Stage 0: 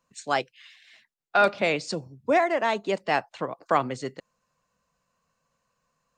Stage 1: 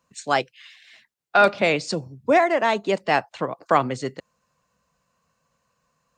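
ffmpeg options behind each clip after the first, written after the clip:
ffmpeg -i in.wav -af "highpass=56,lowshelf=frequency=88:gain=6,volume=4dB" out.wav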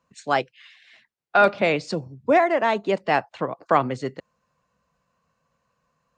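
ffmpeg -i in.wav -af "lowpass=frequency=3000:poles=1" out.wav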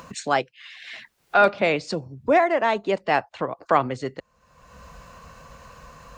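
ffmpeg -i in.wav -af "acompressor=mode=upward:threshold=-24dB:ratio=2.5,asubboost=boost=5:cutoff=68" out.wav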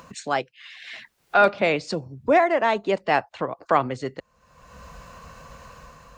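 ffmpeg -i in.wav -af "dynaudnorm=framelen=200:gausssize=5:maxgain=5dB,volume=-3.5dB" out.wav

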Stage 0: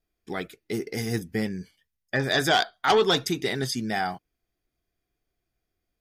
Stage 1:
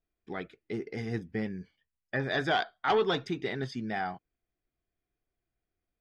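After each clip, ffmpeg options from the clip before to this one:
ffmpeg -i in.wav -af "lowpass=2900,volume=-5.5dB" out.wav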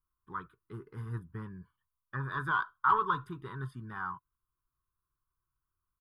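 ffmpeg -i in.wav -af "firequalizer=gain_entry='entry(140,0);entry(220,-13);entry(380,-11);entry(700,-29);entry(1000,14);entry(1500,1);entry(2100,-23);entry(3100,-14);entry(5900,-28);entry(9600,3)':delay=0.05:min_phase=1" out.wav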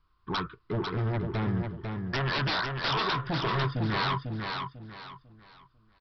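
ffmpeg -i in.wav -af "acompressor=threshold=-35dB:ratio=6,aresample=11025,aeval=exprs='0.0531*sin(PI/2*5.01*val(0)/0.0531)':channel_layout=same,aresample=44100,aecho=1:1:497|994|1491|1988:0.562|0.169|0.0506|0.0152" out.wav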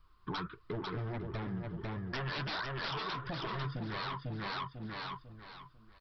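ffmpeg -i in.wav -filter_complex "[0:a]asplit=2[link_01][link_02];[link_02]alimiter=level_in=4dB:limit=-24dB:level=0:latency=1:release=26,volume=-4dB,volume=-2dB[link_03];[link_01][link_03]amix=inputs=2:normalize=0,acompressor=threshold=-35dB:ratio=6,flanger=delay=1.6:depth=5.3:regen=48:speed=1.5:shape=sinusoidal,volume=2.5dB" out.wav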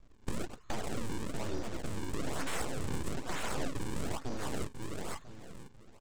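ffmpeg -i in.wav -af "aresample=16000,acrusher=samples=14:mix=1:aa=0.000001:lfo=1:lforange=22.4:lforate=1.1,aresample=44100,aeval=exprs='abs(val(0))':channel_layout=same,volume=5.5dB" out.wav

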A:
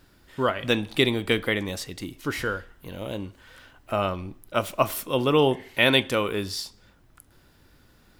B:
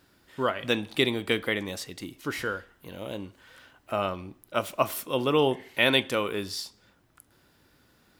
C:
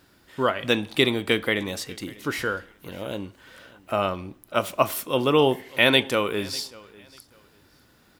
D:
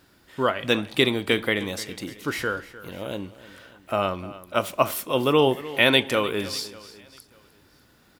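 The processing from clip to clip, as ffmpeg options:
ffmpeg -i in.wav -af "highpass=frequency=140:poles=1,volume=-2.5dB" out.wav
ffmpeg -i in.wav -af "aecho=1:1:595|1190:0.075|0.018,volume=4dB" out.wav
ffmpeg -i in.wav -af "aecho=1:1:302:0.141" out.wav

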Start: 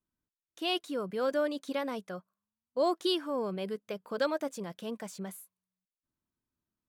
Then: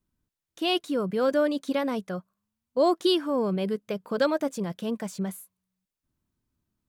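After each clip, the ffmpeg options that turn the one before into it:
ffmpeg -i in.wav -af "lowshelf=frequency=220:gain=10.5,volume=4.5dB" out.wav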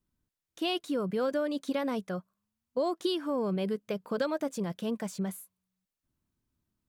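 ffmpeg -i in.wav -af "acompressor=threshold=-24dB:ratio=6,volume=-2dB" out.wav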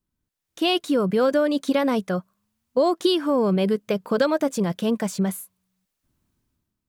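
ffmpeg -i in.wav -af "dynaudnorm=framelen=100:gausssize=9:maxgain=10dB" out.wav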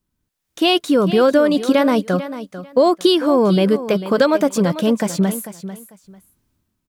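ffmpeg -i in.wav -af "aecho=1:1:445|890:0.224|0.047,volume=6dB" out.wav

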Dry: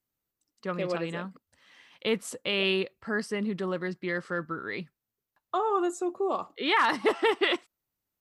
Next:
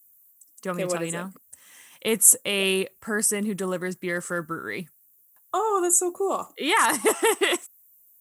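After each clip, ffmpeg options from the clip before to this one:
ffmpeg -i in.wav -af "aexciter=amount=12.9:drive=7.9:freq=6900,volume=3dB" out.wav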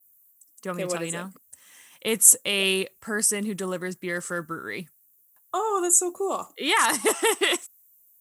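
ffmpeg -i in.wav -af "adynamicequalizer=threshold=0.0126:dfrequency=4800:dqfactor=0.71:tfrequency=4800:tqfactor=0.71:attack=5:release=100:ratio=0.375:range=3:mode=boostabove:tftype=bell,volume=-2dB" out.wav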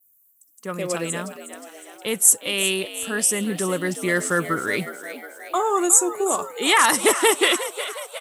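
ffmpeg -i in.wav -filter_complex "[0:a]dynaudnorm=framelen=300:gausssize=7:maxgain=13dB,asplit=2[link_01][link_02];[link_02]asplit=7[link_03][link_04][link_05][link_06][link_07][link_08][link_09];[link_03]adelay=362,afreqshift=72,volume=-12.5dB[link_10];[link_04]adelay=724,afreqshift=144,volume=-17.1dB[link_11];[link_05]adelay=1086,afreqshift=216,volume=-21.7dB[link_12];[link_06]adelay=1448,afreqshift=288,volume=-26.2dB[link_13];[link_07]adelay=1810,afreqshift=360,volume=-30.8dB[link_14];[link_08]adelay=2172,afreqshift=432,volume=-35.4dB[link_15];[link_09]adelay=2534,afreqshift=504,volume=-40dB[link_16];[link_10][link_11][link_12][link_13][link_14][link_15][link_16]amix=inputs=7:normalize=0[link_17];[link_01][link_17]amix=inputs=2:normalize=0,volume=-1dB" out.wav

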